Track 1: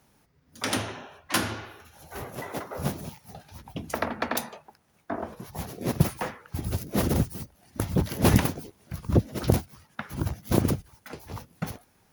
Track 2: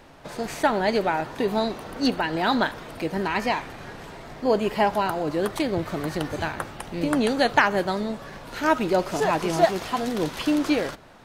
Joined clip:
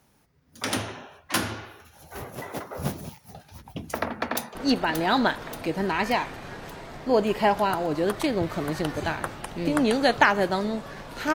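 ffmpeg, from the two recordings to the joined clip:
-filter_complex "[0:a]apad=whole_dur=11.34,atrim=end=11.34,atrim=end=4.552[a];[1:a]atrim=start=1.908:end=8.7[b];[a][b]acrossfade=d=0.004:c1=hsin:c2=hsin,asplit=2[c][d];[d]afade=t=in:st=4.3:d=0.01,afade=t=out:st=4.55:d=0.01,aecho=0:1:580|1160|1740|2320|2900|3480|4060:0.473151|0.260233|0.143128|0.0787205|0.0432963|0.023813|0.0130971[e];[c][e]amix=inputs=2:normalize=0"

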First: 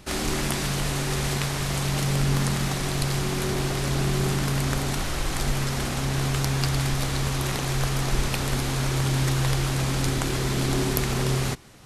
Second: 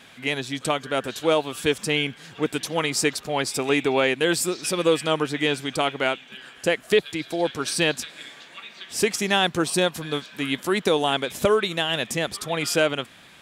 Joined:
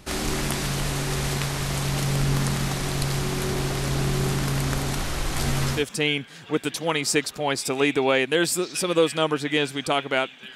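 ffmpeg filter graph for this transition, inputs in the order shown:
-filter_complex "[0:a]asettb=1/sr,asplit=3[a][b][c];[a]atrim=end=5.354[d];[b]atrim=start=5.35:end=5.85,asetpts=PTS-STARTPTS,afade=t=in:d=0.004:c=qsin,afade=t=out:st=0.496:d=0.004:c=qsin,asplit=2[e][f];[f]adelay=13,volume=-3dB[g];[e][g]amix=inputs=2:normalize=0,atrim=end_sample=22050[h];[c]atrim=start=5.846[i];[d][h]acrossfade=d=0.004:c1=hsin:c2=qsin[j];[j][i]acrossfade=d=0.004:c1=qsin:c2=hsin,apad=whole_dur=10.55,atrim=end=10.55,atrim=end=5.85,asetpts=PTS-STARTPTS[k];[1:a]atrim=start=1.6:end=6.44,asetpts=PTS-STARTPTS[l];[k][l]acrossfade=d=0.14:c1=tri:c2=tri"

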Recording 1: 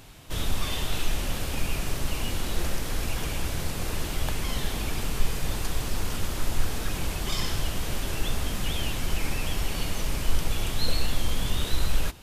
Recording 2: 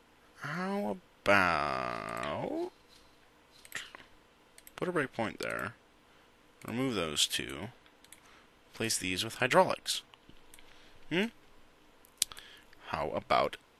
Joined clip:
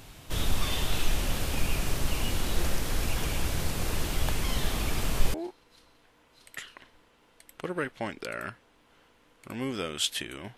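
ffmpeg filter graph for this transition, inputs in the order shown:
-filter_complex "[1:a]asplit=2[a][b];[0:a]apad=whole_dur=10.57,atrim=end=10.57,atrim=end=5.342[c];[b]atrim=start=2.518:end=7.75[d];[a]atrim=start=1.81:end=2.52,asetpts=PTS-STARTPTS,volume=-9dB,afade=t=in:d=0.004:c=hsin,afade=t=out:st=0.706:d=0.004:c=hsin,adelay=4630[e];[c][d]acrossfade=d=0.004:c1=hsin:c2=hsin[f];[f][e]amix=inputs=2:normalize=0"

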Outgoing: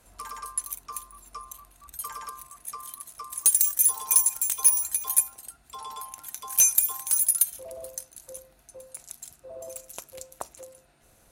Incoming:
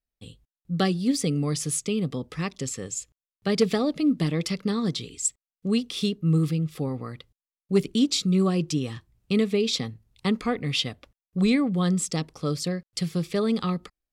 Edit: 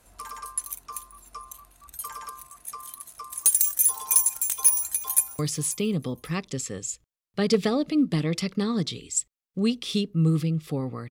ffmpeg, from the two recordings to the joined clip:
-filter_complex "[0:a]apad=whole_dur=11.1,atrim=end=11.1,atrim=end=5.392[a];[1:a]atrim=start=1.468:end=7.18[b];[a][b]acrossfade=d=0.004:c1=hsin:c2=hsin,asplit=2[c][d];[d]afade=t=in:st=4.74:d=0.01,afade=t=out:st=5.39:d=0.01,aecho=0:1:540|1080:0.149624|0.0299247[e];[c][e]amix=inputs=2:normalize=0"

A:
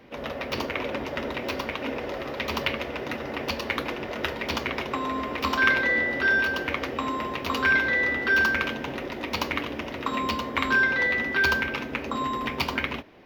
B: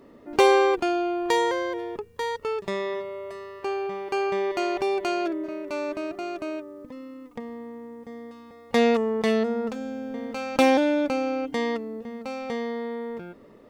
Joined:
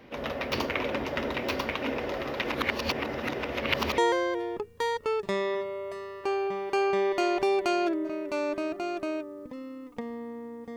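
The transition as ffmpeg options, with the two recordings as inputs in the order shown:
-filter_complex "[0:a]apad=whole_dur=10.76,atrim=end=10.76,asplit=2[a][b];[a]atrim=end=2.422[c];[b]atrim=start=2.418:end=3.982,asetpts=PTS-STARTPTS,areverse[d];[1:a]atrim=start=1.368:end=8.15[e];[c][d]acrossfade=d=0.004:c1=hsin:c2=hsin[f];[f][e]acrossfade=d=0.004:c1=hsin:c2=hsin"

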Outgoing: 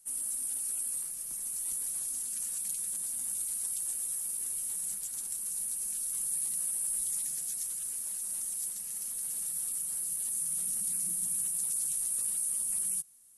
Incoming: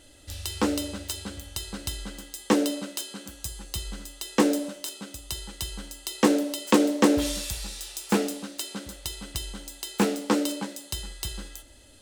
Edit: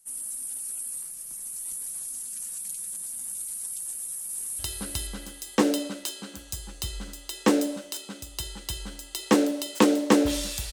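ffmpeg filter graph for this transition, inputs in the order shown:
-filter_complex "[0:a]apad=whole_dur=10.72,atrim=end=10.72,atrim=end=4.592[a];[1:a]atrim=start=1.508:end=7.64[b];[a][b]acrossfade=d=0.004:c1=hsin:c2=hsin,asplit=2[c][d];[d]afade=t=in:st=3.82:d=0.01,afade=t=out:st=4.59:d=0.01,aecho=0:1:480|960|1440|1920:0.707946|0.212384|0.0637151|0.0191145[e];[c][e]amix=inputs=2:normalize=0"

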